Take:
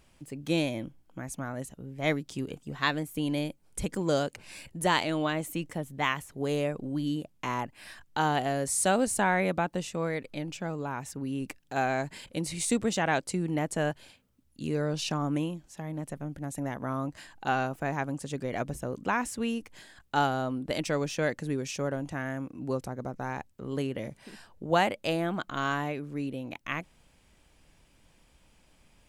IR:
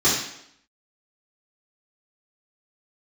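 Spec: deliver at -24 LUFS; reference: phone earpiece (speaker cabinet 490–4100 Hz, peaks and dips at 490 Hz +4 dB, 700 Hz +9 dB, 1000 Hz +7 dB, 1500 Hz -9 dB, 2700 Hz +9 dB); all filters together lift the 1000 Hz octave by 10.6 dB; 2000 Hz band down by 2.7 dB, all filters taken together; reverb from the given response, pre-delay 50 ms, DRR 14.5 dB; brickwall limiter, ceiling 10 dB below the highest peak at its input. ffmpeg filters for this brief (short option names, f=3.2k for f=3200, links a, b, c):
-filter_complex "[0:a]equalizer=f=1k:t=o:g=7,equalizer=f=2k:t=o:g=-5,alimiter=limit=-18.5dB:level=0:latency=1,asplit=2[a][b];[1:a]atrim=start_sample=2205,adelay=50[c];[b][c]afir=irnorm=-1:irlink=0,volume=-32.5dB[d];[a][d]amix=inputs=2:normalize=0,highpass=490,equalizer=f=490:t=q:w=4:g=4,equalizer=f=700:t=q:w=4:g=9,equalizer=f=1k:t=q:w=4:g=7,equalizer=f=1.5k:t=q:w=4:g=-9,equalizer=f=2.7k:t=q:w=4:g=9,lowpass=f=4.1k:w=0.5412,lowpass=f=4.1k:w=1.3066,volume=4.5dB"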